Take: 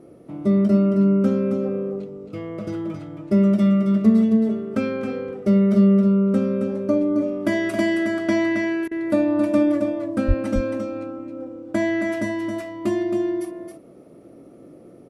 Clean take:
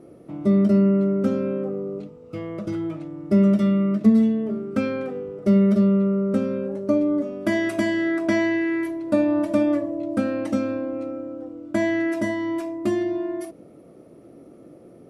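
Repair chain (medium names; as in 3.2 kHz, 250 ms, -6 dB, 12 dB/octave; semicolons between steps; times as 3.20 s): 10.27–10.39 s: high-pass 140 Hz 24 dB/octave; interpolate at 8.88 s, 32 ms; inverse comb 270 ms -6.5 dB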